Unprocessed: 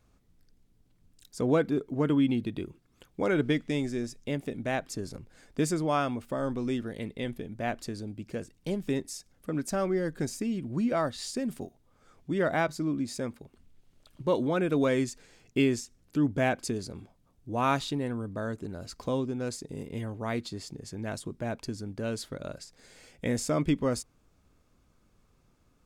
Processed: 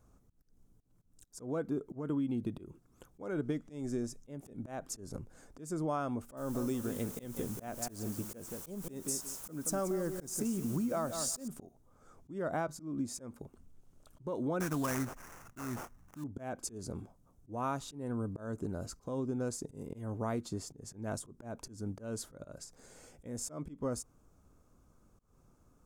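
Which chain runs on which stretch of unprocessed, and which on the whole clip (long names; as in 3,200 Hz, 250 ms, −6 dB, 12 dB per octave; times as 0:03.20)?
0:06.37–0:11.48: high-shelf EQ 4,700 Hz +11 dB + bit-depth reduction 8 bits, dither triangular + repeating echo 177 ms, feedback 17%, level −11 dB
0:14.60–0:16.24: flat-topped bell 1,900 Hz +10.5 dB + comb filter 1.1 ms, depth 69% + sample-rate reduction 4,000 Hz, jitter 20%
whole clip: flat-topped bell 2,900 Hz −10.5 dB; downward compressor 6 to 1, threshold −32 dBFS; volume swells 190 ms; level +1 dB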